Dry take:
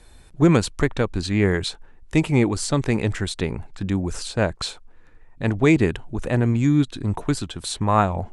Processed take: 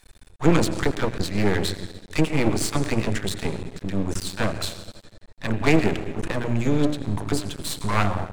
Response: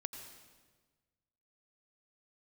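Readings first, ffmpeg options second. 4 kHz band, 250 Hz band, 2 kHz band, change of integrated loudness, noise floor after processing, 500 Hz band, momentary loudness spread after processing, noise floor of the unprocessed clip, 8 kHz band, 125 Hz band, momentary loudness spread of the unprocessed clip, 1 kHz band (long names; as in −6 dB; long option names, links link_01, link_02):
−0.5 dB, −3.0 dB, −0.5 dB, −2.5 dB, −52 dBFS, −2.0 dB, 10 LU, −48 dBFS, 0.0 dB, −4.0 dB, 10 LU, −2.5 dB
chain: -filter_complex "[0:a]bandreject=frequency=60:width_type=h:width=6,bandreject=frequency=120:width_type=h:width=6,bandreject=frequency=180:width_type=h:width=6,bandreject=frequency=240:width_type=h:width=6,bandreject=frequency=300:width_type=h:width=6,bandreject=frequency=360:width_type=h:width=6,acrossover=split=780[link_01][link_02];[link_01]adelay=30[link_03];[link_03][link_02]amix=inputs=2:normalize=0,asplit=2[link_04][link_05];[1:a]atrim=start_sample=2205[link_06];[link_05][link_06]afir=irnorm=-1:irlink=0,volume=3dB[link_07];[link_04][link_07]amix=inputs=2:normalize=0,aeval=exprs='max(val(0),0)':channel_layout=same,volume=-3dB"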